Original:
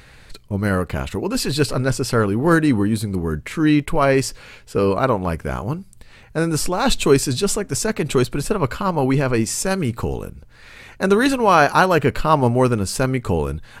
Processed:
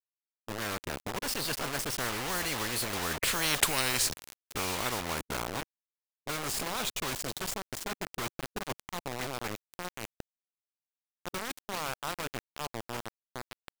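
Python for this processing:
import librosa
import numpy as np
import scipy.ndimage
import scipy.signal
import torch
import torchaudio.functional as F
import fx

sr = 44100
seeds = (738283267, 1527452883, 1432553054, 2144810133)

y = fx.doppler_pass(x, sr, speed_mps=23, closest_m=2.3, pass_at_s=3.57)
y = fx.quant_dither(y, sr, seeds[0], bits=8, dither='none')
y = fx.spectral_comp(y, sr, ratio=10.0)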